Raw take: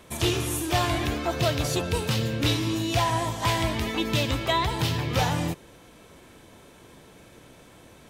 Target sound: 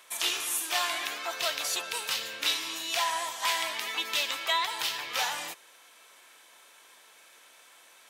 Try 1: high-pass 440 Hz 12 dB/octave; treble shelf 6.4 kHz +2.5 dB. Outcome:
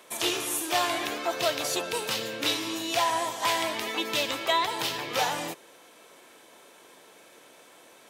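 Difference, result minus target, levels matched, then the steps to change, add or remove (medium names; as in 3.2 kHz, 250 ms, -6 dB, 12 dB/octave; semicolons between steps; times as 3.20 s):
500 Hz band +8.0 dB
change: high-pass 1.1 kHz 12 dB/octave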